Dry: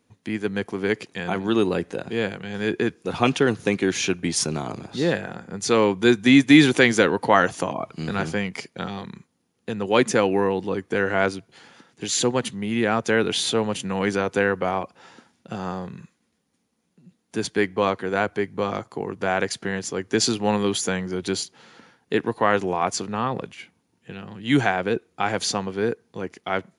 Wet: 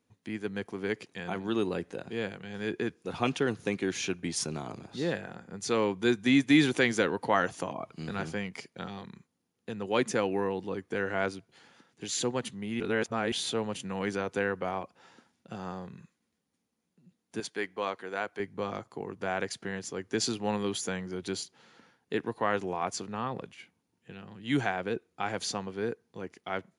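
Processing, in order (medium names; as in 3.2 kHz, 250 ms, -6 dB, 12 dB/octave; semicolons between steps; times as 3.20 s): 12.80–13.32 s: reverse; 17.40–18.40 s: high-pass 510 Hz 6 dB/octave; trim -9 dB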